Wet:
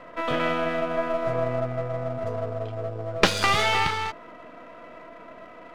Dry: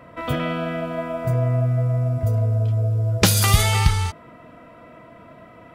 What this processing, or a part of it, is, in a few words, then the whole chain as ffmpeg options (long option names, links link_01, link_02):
crystal radio: -af "highpass=310,lowpass=3300,aeval=exprs='if(lt(val(0),0),0.447*val(0),val(0))':channel_layout=same,volume=4.5dB"